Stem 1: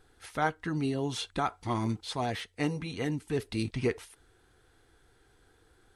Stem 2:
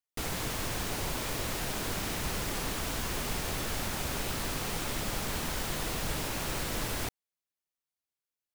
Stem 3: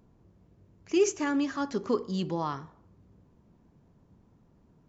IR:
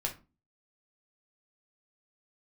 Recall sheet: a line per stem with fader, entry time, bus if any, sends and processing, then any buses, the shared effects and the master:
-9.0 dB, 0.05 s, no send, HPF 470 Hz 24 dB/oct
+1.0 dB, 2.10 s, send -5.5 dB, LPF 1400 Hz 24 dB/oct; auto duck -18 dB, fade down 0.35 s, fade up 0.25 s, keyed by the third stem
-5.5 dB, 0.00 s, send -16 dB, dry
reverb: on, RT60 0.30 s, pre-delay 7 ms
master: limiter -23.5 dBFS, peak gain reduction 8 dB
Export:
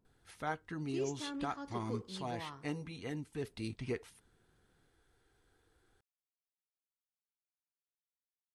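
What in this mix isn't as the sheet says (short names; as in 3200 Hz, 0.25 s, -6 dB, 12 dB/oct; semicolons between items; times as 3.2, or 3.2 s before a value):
stem 1: missing HPF 470 Hz 24 dB/oct; stem 2: muted; stem 3 -5.5 dB -> -16.0 dB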